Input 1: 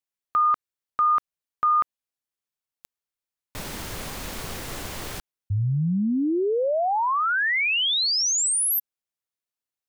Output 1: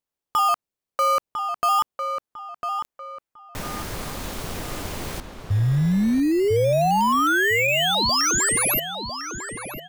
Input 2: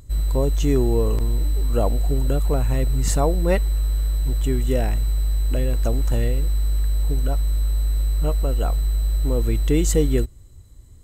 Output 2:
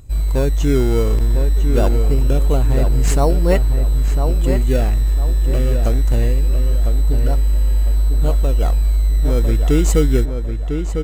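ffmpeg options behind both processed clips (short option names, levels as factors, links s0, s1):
-filter_complex "[0:a]asplit=2[s0][s1];[s1]acrusher=samples=17:mix=1:aa=0.000001:lfo=1:lforange=17:lforate=0.23,volume=0.501[s2];[s0][s2]amix=inputs=2:normalize=0,asplit=2[s3][s4];[s4]adelay=1001,lowpass=f=2800:p=1,volume=0.473,asplit=2[s5][s6];[s6]adelay=1001,lowpass=f=2800:p=1,volume=0.35,asplit=2[s7][s8];[s8]adelay=1001,lowpass=f=2800:p=1,volume=0.35,asplit=2[s9][s10];[s10]adelay=1001,lowpass=f=2800:p=1,volume=0.35[s11];[s3][s5][s7][s9][s11]amix=inputs=5:normalize=0"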